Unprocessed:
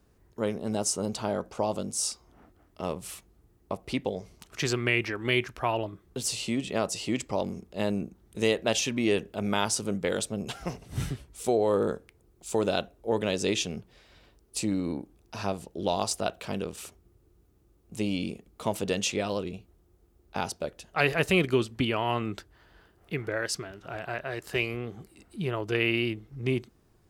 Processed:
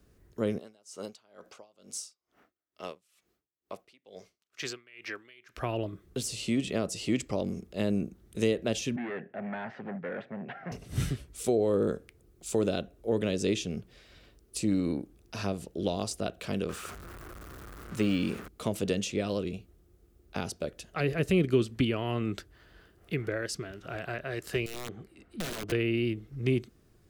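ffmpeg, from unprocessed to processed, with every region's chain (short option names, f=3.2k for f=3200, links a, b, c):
-filter_complex "[0:a]asettb=1/sr,asplit=3[a][b][c];[a]atrim=end=0.584[d];[b]atrim=start=0.58:end=5.57,asetpts=PTS-STARTPTS,afade=t=in:d=0.004:c=qsin,afade=t=out:st=4.986:d=0.004:c=qsin,highpass=f=900:p=1,equalizer=f=10k:w=1.1:g=-6,aeval=exprs='val(0)*pow(10,-30*(0.5-0.5*cos(2*PI*2.2*n/s))/20)':c=same[e];[c]atrim=start=5.566[f];[d][e]acrossfade=d=0.004:c1=hsin:c2=qsin[g];[g][f]acrossfade=d=0.004:c1=qsin:c2=hsin,asettb=1/sr,asplit=3[h][i][j];[h]atrim=end=8.964[k];[i]atrim=start=8.96:end=10.72,asetpts=PTS-STARTPTS,afade=t=in:d=0.004:c=qsin,afade=t=out:st=1.756:d=0.004:c=qsin,volume=30dB,asoftclip=hard,volume=-30dB,highpass=f=160:w=0.5412,highpass=f=160:w=1.3066,equalizer=f=200:t=q:w=4:g=-4,equalizer=f=310:t=q:w=4:g=-9,equalizer=f=450:t=q:w=4:g=-7,equalizer=f=770:t=q:w=4:g=7,equalizer=f=1.2k:t=q:w=4:g=-6,equalizer=f=1.8k:t=q:w=4:g=8,lowpass=f=2k:w=0.5412,lowpass=f=2k:w=1.3066[l];[j]atrim=start=10.716[m];[k][l]acrossfade=d=0.004:c1=hsin:c2=qsin[n];[n][m]acrossfade=d=0.004:c1=qsin:c2=hsin,asettb=1/sr,asplit=3[o][p][q];[o]atrim=end=16.694[r];[p]atrim=start=16.69:end=18.48,asetpts=PTS-STARTPTS,afade=t=in:d=0.004:c=qsin,afade=t=out:st=1.786:d=0.004:c=qsin,aeval=exprs='val(0)+0.5*0.00668*sgn(val(0))':c=same,deesser=0.95,equalizer=f=1.3k:w=1.1:g=14.5[s];[q]atrim=start=18.476[t];[r][s]acrossfade=d=0.004:c1=hsin:c2=qsin[u];[u][t]acrossfade=d=0.004:c1=qsin:c2=hsin,asettb=1/sr,asplit=3[v][w][x];[v]atrim=end=24.664[y];[w]atrim=start=24.66:end=25.72,asetpts=PTS-STARTPTS,afade=t=in:d=0.004:c=qsin,afade=t=out:st=1.056:d=0.004:c=qsin,bass=f=250:g=-3,treble=f=4k:g=-12,aeval=exprs='(mod(28.2*val(0)+1,2)-1)/28.2':c=same[z];[x]atrim=start=25.716[aa];[y][z]acrossfade=d=0.004:c1=hsin:c2=qsin[ab];[ab][aa]acrossfade=d=0.004:c1=qsin:c2=hsin,equalizer=f=890:w=2.6:g=-8,acrossover=split=480[ac][ad];[ad]acompressor=threshold=-36dB:ratio=4[ae];[ac][ae]amix=inputs=2:normalize=0,volume=1.5dB"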